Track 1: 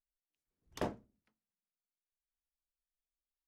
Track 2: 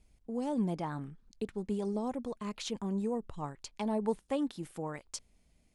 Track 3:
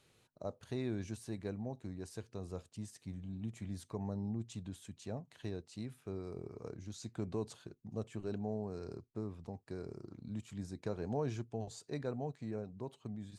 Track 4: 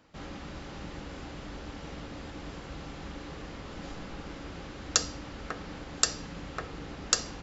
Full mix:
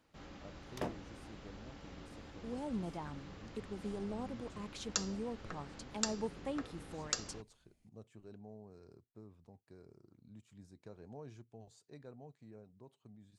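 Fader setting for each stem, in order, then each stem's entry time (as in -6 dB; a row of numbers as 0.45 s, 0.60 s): -2.5 dB, -7.5 dB, -13.5 dB, -10.5 dB; 0.00 s, 2.15 s, 0.00 s, 0.00 s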